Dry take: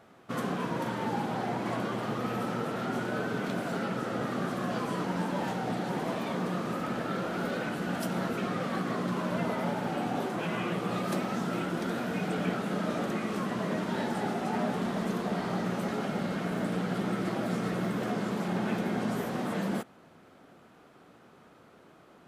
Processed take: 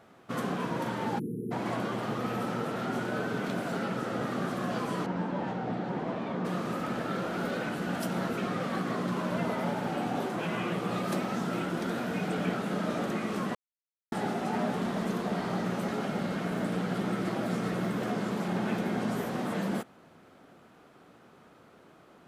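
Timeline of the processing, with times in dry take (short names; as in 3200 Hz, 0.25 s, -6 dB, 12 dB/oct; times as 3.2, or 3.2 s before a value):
1.19–1.51 spectral delete 490–9500 Hz
5.06–6.45 tape spacing loss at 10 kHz 21 dB
13.55–14.12 mute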